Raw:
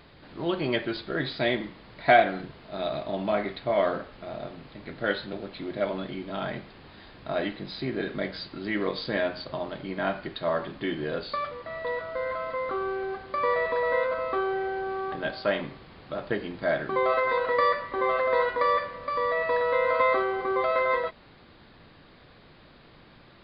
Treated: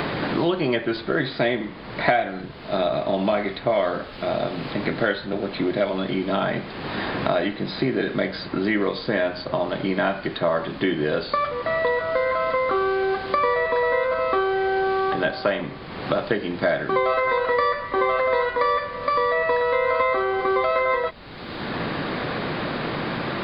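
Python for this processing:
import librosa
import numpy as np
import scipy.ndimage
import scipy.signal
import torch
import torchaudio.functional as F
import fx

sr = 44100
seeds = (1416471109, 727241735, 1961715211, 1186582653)

y = fx.band_squash(x, sr, depth_pct=100)
y = y * librosa.db_to_amplitude(4.5)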